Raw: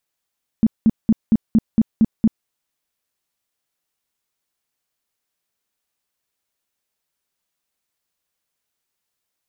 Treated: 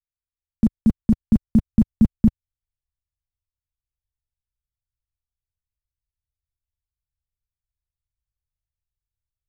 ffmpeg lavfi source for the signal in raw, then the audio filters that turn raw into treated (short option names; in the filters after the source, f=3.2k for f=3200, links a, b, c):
-f lavfi -i "aevalsrc='0.355*sin(2*PI*222*mod(t,0.23))*lt(mod(t,0.23),8/222)':d=1.84:s=44100"
-filter_complex "[0:a]asubboost=boost=6.5:cutoff=140,acrossover=split=110[a][b];[b]aeval=exprs='val(0)*gte(abs(val(0)),0.0188)':c=same[c];[a][c]amix=inputs=2:normalize=0"